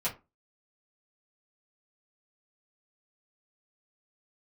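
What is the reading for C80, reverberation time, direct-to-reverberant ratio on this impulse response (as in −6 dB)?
21.5 dB, 0.25 s, −8.5 dB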